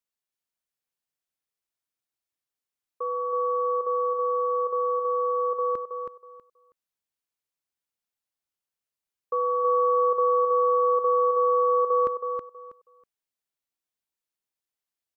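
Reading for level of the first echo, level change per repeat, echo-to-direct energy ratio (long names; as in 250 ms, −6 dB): −5.5 dB, −13.5 dB, −5.5 dB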